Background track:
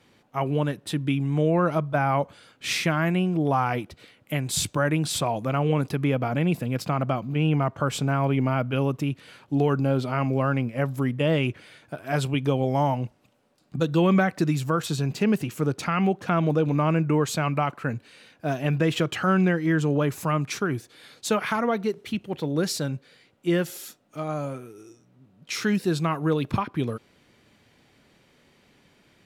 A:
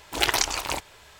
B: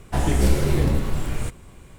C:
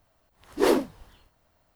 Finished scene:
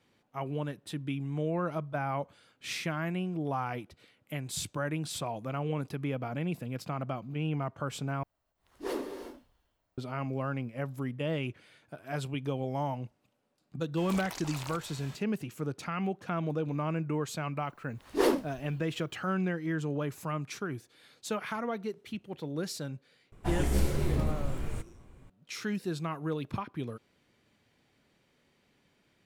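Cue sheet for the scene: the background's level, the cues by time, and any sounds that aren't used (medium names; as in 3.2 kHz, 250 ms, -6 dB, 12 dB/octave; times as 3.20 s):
background track -10 dB
8.23 s: replace with C -14.5 dB + gated-style reverb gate 390 ms flat, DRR 4.5 dB
13.97 s: add A -0.5 dB + compression 10:1, threshold -37 dBFS
17.57 s: add C -4.5 dB
23.32 s: add B -9 dB + tape noise reduction on one side only decoder only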